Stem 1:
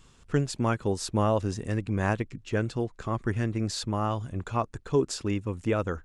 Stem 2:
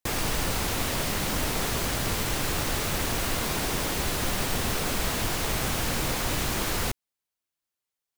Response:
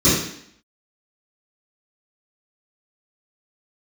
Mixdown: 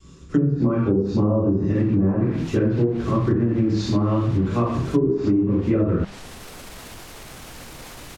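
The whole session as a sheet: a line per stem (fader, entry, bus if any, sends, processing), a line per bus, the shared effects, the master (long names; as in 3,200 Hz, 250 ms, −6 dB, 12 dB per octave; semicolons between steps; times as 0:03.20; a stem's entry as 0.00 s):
−4.0 dB, 0.00 s, send −10.5 dB, noise gate with hold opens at −50 dBFS
−6.0 dB, 1.70 s, no send, brickwall limiter −23.5 dBFS, peak gain reduction 8.5 dB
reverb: on, RT60 0.65 s, pre-delay 3 ms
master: treble cut that deepens with the level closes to 900 Hz, closed at −8 dBFS; mains-hum notches 50/100/150/200 Hz; downward compressor 5 to 1, threshold −16 dBFS, peak gain reduction 10 dB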